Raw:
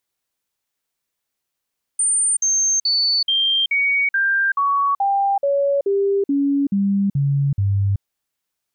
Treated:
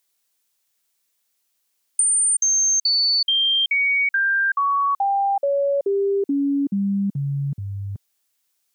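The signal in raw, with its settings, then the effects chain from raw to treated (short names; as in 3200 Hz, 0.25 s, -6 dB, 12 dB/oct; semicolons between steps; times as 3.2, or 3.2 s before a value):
stepped sine 8980 Hz down, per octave 2, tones 14, 0.38 s, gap 0.05 s -15 dBFS
HPF 180 Hz 12 dB/oct; high shelf 2800 Hz +10 dB; compressor 6:1, threshold -18 dBFS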